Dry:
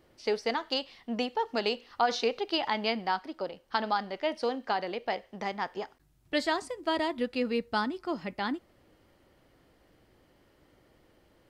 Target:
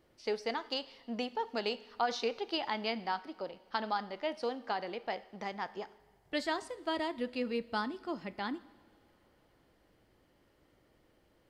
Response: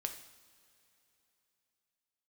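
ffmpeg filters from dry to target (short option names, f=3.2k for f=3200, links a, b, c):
-filter_complex "[0:a]asplit=2[a][b];[1:a]atrim=start_sample=2205,asetrate=29106,aresample=44100[c];[b][c]afir=irnorm=-1:irlink=0,volume=-11.5dB[d];[a][d]amix=inputs=2:normalize=0,volume=-7.5dB"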